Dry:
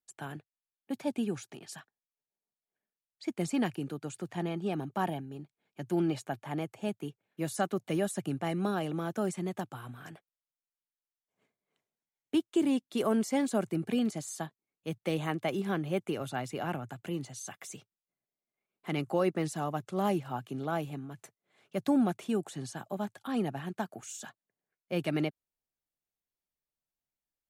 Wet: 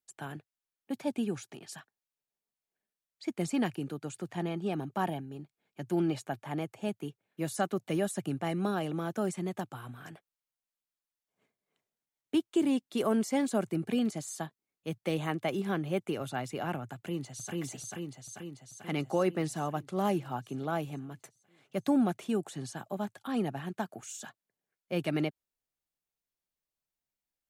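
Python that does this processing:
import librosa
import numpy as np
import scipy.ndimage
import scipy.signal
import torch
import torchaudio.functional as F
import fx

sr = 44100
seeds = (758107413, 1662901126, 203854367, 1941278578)

y = fx.echo_throw(x, sr, start_s=16.95, length_s=0.64, ms=440, feedback_pct=65, wet_db=-0.5)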